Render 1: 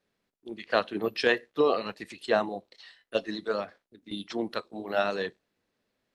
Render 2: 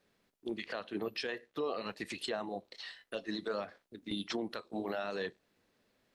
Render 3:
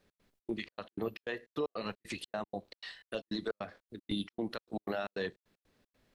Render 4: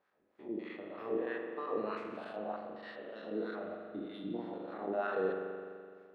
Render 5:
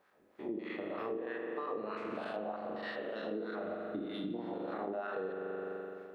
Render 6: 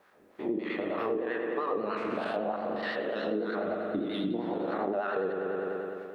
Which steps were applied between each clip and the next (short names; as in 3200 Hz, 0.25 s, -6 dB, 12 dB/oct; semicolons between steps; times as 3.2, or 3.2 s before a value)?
compressor 3:1, threshold -39 dBFS, peak gain reduction 15.5 dB; limiter -31 dBFS, peak gain reduction 10 dB; gain +4.5 dB
step gate "x.xx.xx." 154 bpm -60 dB; low shelf 120 Hz +11.5 dB; gain +1 dB
stepped spectrum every 0.2 s; wah 3.2 Hz 350–1400 Hz, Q 2.1; spring tank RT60 2.1 s, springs 42 ms, chirp 75 ms, DRR 2.5 dB; gain +9.5 dB
compressor 10:1, threshold -43 dBFS, peak gain reduction 15 dB; gain +8 dB
vibrato 10 Hz 63 cents; gain +7.5 dB